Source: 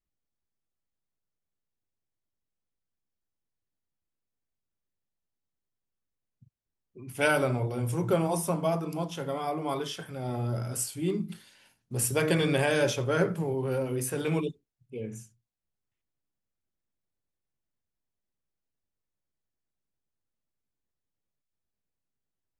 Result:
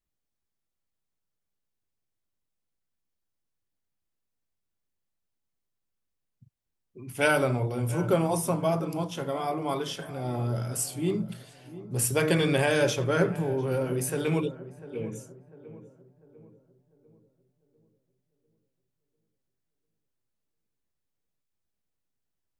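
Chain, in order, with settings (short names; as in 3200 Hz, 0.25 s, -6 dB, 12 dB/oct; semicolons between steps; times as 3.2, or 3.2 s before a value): darkening echo 0.697 s, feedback 46%, low-pass 1300 Hz, level -15 dB; gain +1.5 dB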